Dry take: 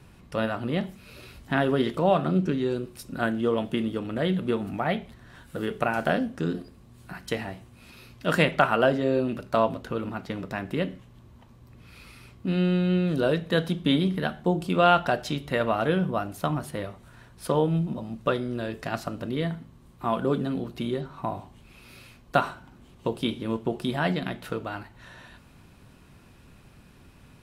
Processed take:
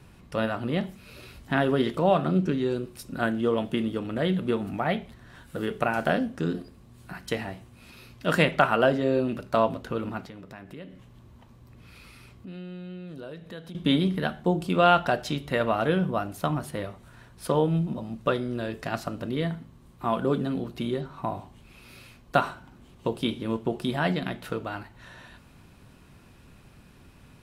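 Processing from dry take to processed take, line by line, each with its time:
10.26–13.75 compressor 2.5:1, threshold -45 dBFS

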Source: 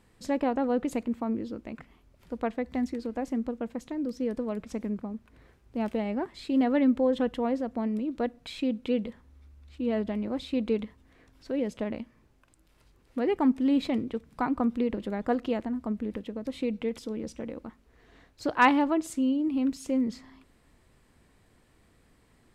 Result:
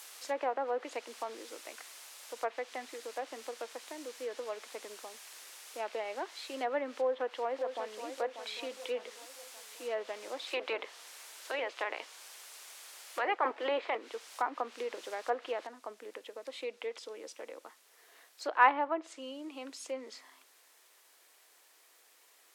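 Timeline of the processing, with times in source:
2.48–6.14 brick-wall FIR low-pass 4100 Hz
6.93–8.07 echo throw 0.59 s, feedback 50%, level -9 dB
10.46–13.96 spectral limiter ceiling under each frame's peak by 19 dB
15.67 noise floor step -48 dB -63 dB
whole clip: Bessel high-pass 660 Hz, order 8; treble ducked by the level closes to 1800 Hz, closed at -29 dBFS

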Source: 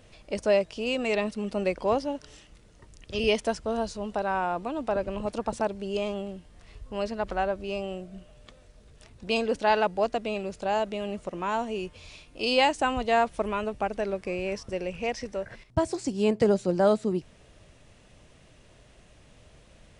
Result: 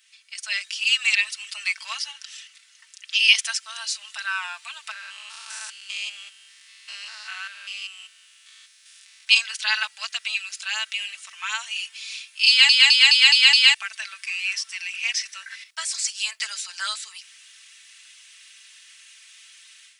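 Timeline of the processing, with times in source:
2.11–3.14 high shelf 5600 Hz -6.5 dB
4.91–9.27 stepped spectrum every 0.2 s
12.48 stutter in place 0.21 s, 6 plays
whole clip: Bessel high-pass 2600 Hz, order 6; comb 4.5 ms, depth 74%; AGC gain up to 12 dB; gain +3 dB

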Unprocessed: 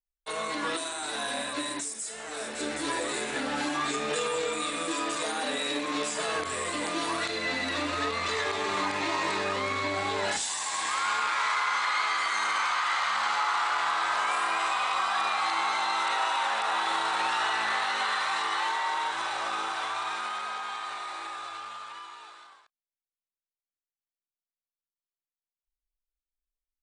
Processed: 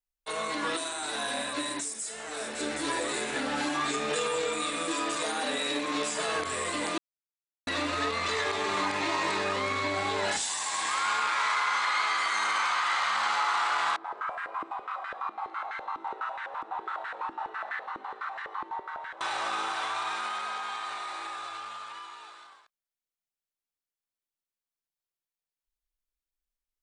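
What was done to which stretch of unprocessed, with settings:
6.98–7.67 mute
13.96–19.21 stepped band-pass 12 Hz 320–1700 Hz

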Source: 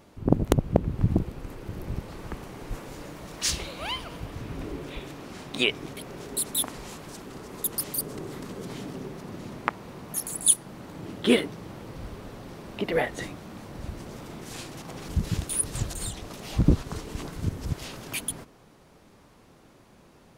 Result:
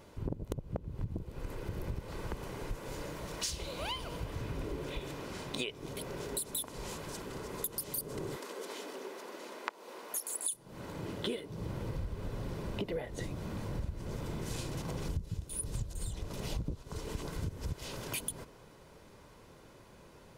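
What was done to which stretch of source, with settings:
8.36–10.53 Bessel high-pass 440 Hz, order 8
11.5–16.58 low shelf 230 Hz +9.5 dB
whole clip: dynamic EQ 1800 Hz, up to -5 dB, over -46 dBFS, Q 1; comb 2 ms, depth 33%; compressor 16:1, threshold -32 dBFS; gain -1 dB

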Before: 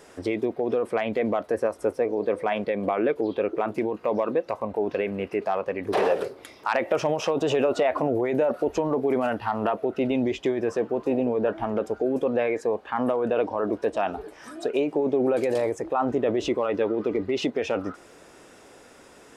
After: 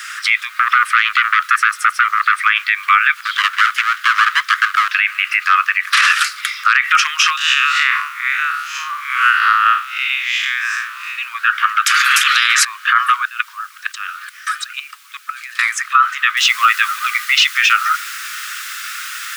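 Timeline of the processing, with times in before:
0.56–2.41 core saturation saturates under 1000 Hz
3.25–4.88 minimum comb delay 0.59 ms
5.94–6.41 bell 7300 Hz +11 dB 1.5 oct
7.37–11.16 time blur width 0.135 s
11.86–12.65 spectral compressor 10:1
13.25–15.59 level quantiser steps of 21 dB
16.37 noise floor step -69 dB -54 dB
whole clip: steep high-pass 1200 Hz 96 dB/oct; high shelf 4500 Hz -9 dB; maximiser +30 dB; gain -1 dB

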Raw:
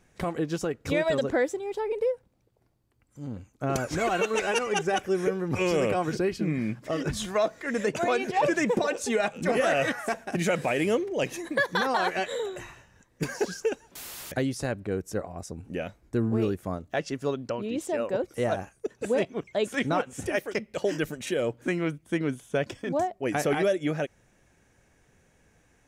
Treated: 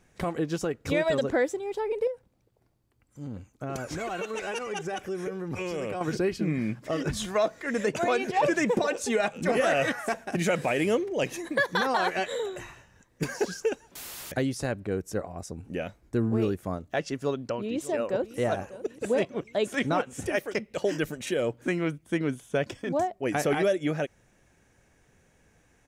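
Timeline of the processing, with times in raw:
2.07–6.01 compressor 2.5:1, threshold -32 dBFS
17.19–18.38 echo throw 0.6 s, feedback 55%, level -16 dB

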